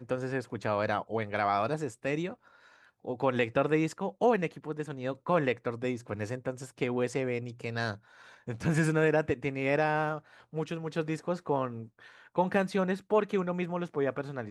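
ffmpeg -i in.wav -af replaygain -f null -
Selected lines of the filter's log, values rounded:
track_gain = +10.9 dB
track_peak = 0.162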